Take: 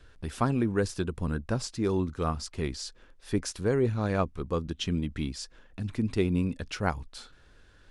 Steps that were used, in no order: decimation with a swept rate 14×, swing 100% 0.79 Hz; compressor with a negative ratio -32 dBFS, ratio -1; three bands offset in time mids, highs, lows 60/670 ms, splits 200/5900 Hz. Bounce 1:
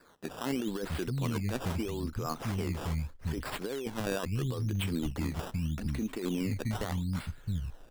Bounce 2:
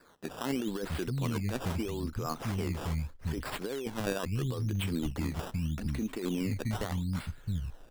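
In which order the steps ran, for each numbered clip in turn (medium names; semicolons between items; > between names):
three bands offset in time > decimation with a swept rate > compressor with a negative ratio; three bands offset in time > compressor with a negative ratio > decimation with a swept rate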